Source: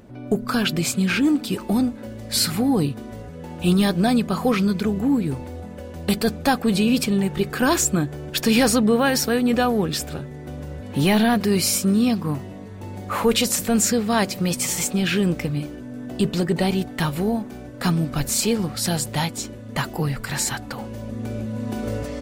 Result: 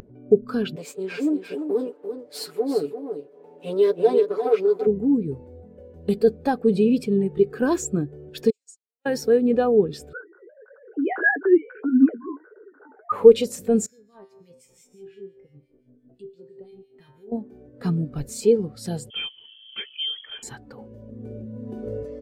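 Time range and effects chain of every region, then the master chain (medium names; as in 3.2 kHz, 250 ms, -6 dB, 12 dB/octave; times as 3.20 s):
0.76–4.87 s: comb filter that takes the minimum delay 6.9 ms + high-pass 300 Hz + delay 343 ms -6 dB
8.50–9.06 s: comb filter that takes the minimum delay 7 ms + band-pass filter 7.4 kHz, Q 4.2 + upward expansion 2.5:1, over -47 dBFS
10.13–13.12 s: formants replaced by sine waves + resonant low-pass 1.5 kHz, resonance Q 14 + flange 1.6 Hz, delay 6.3 ms, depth 9.3 ms, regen +39%
13.86–17.32 s: feedback comb 130 Hz, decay 0.99 s, mix 90% + harmonic tremolo 5.8 Hz, crossover 1.7 kHz
19.10–20.43 s: distance through air 120 m + band-stop 490 Hz, Q 5.8 + frequency inversion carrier 3.3 kHz
whole clip: peaking EQ 430 Hz +10 dB 0.44 oct; upward compressor, threshold -30 dBFS; spectral contrast expander 1.5:1; trim +1.5 dB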